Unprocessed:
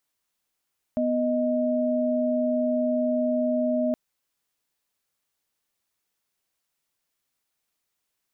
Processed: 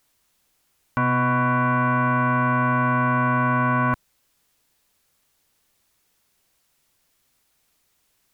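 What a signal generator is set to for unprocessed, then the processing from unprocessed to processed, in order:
chord B3/D#5 sine, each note -24 dBFS 2.97 s
bass shelf 150 Hz +7.5 dB; sine folder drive 8 dB, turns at -16.5 dBFS

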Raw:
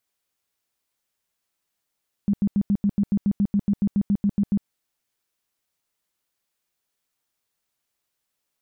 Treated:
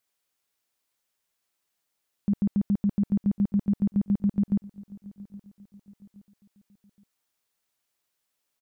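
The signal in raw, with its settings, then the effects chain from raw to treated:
tone bursts 202 Hz, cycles 11, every 0.14 s, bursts 17, -16.5 dBFS
bass shelf 210 Hz -4.5 dB; feedback delay 820 ms, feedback 43%, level -21 dB

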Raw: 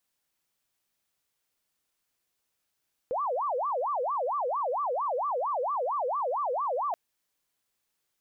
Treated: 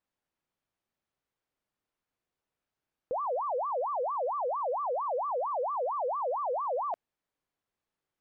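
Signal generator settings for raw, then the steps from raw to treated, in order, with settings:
siren wail 483–1180 Hz 4.4 per s sine -26.5 dBFS 3.83 s
low-pass 1.1 kHz 6 dB/octave

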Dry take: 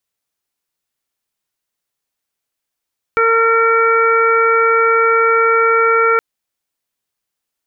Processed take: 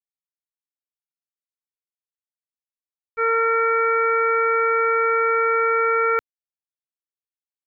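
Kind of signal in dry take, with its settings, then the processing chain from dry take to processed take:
steady additive tone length 3.02 s, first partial 456 Hz, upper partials -12/2/-11/-5.5 dB, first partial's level -14 dB
bass shelf 140 Hz +7.5 dB; expander -5 dBFS

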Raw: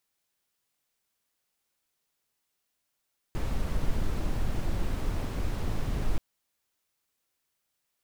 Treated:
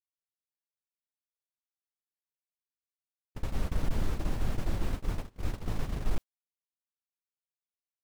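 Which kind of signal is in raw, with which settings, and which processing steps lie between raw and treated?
noise brown, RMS -27 dBFS 2.83 s
gate -28 dBFS, range -30 dB; overload inside the chain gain 19.5 dB

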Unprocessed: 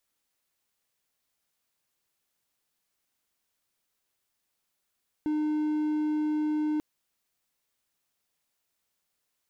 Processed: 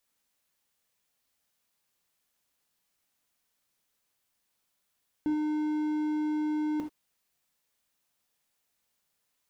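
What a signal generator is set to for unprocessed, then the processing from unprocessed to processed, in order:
tone triangle 304 Hz -23 dBFS 1.54 s
gated-style reverb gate 100 ms flat, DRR 4 dB

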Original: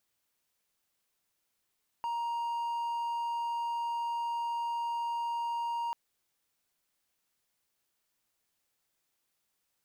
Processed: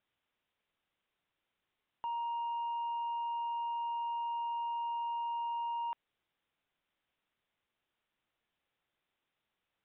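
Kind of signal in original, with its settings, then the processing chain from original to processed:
tone triangle 938 Hz -29 dBFS 3.89 s
hard clipper -34.5 dBFS; resampled via 8 kHz

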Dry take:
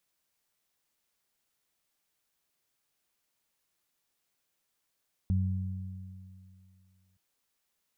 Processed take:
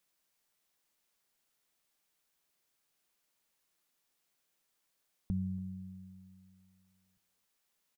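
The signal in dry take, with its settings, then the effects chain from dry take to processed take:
additive tone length 1.87 s, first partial 93.8 Hz, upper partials -6 dB, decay 2.46 s, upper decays 2.42 s, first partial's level -24 dB
peaking EQ 87 Hz -12.5 dB 0.48 oct; delay 284 ms -21 dB

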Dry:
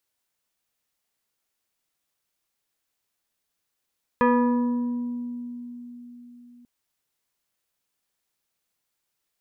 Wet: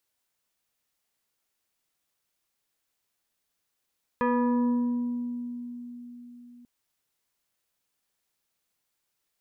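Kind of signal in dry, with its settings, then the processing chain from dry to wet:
FM tone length 2.44 s, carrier 242 Hz, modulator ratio 3.03, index 1.6, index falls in 2.12 s exponential, decay 4.39 s, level -15 dB
peak limiter -21.5 dBFS

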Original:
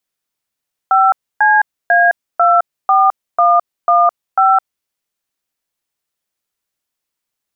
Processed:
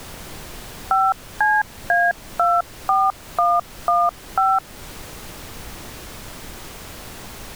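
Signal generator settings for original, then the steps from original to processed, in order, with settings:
DTMF "5CA24115", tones 212 ms, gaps 283 ms, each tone -10 dBFS
added noise pink -36 dBFS; compression 1.5:1, threshold -26 dBFS

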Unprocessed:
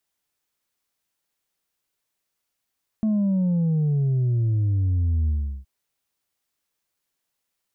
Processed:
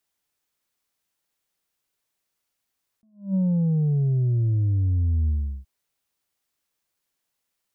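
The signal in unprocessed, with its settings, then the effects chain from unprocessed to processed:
sub drop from 220 Hz, over 2.62 s, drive 2.5 dB, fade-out 0.37 s, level -19 dB
attacks held to a fixed rise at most 180 dB/s

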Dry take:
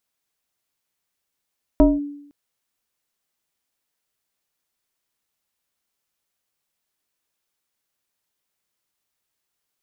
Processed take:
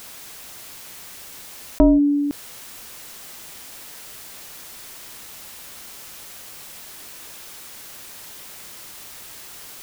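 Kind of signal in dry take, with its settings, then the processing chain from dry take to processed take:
FM tone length 0.51 s, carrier 288 Hz, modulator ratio 1.15, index 1.1, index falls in 0.20 s linear, decay 0.74 s, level -7 dB
level flattener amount 70%

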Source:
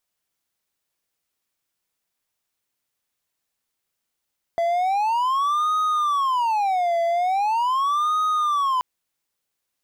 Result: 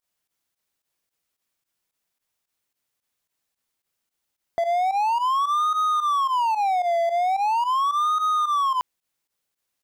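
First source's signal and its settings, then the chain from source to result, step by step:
siren wail 676–1250 Hz 0.41 per s triangle -16.5 dBFS 4.23 s
volume shaper 110 bpm, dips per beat 2, -14 dB, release 69 ms

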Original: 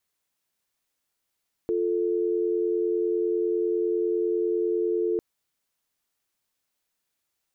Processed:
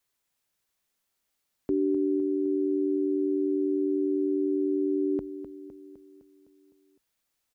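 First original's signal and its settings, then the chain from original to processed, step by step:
call progress tone dial tone, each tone -25 dBFS 3.50 s
frequency shift -57 Hz; feedback delay 255 ms, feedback 57%, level -10.5 dB

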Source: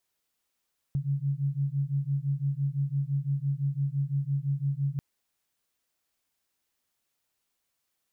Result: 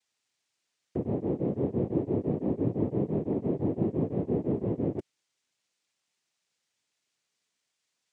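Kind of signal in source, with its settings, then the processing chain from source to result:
beating tones 137 Hz, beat 5.9 Hz, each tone -29 dBFS 4.04 s
noise-vocoded speech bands 3

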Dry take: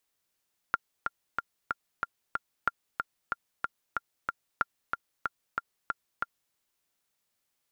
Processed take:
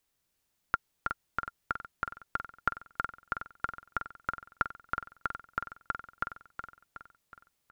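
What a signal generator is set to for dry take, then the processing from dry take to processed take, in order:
metronome 186 bpm, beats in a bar 6, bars 3, 1.39 kHz, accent 4.5 dB -11.5 dBFS
bass shelf 200 Hz +10 dB; on a send: feedback delay 369 ms, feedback 51%, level -8 dB

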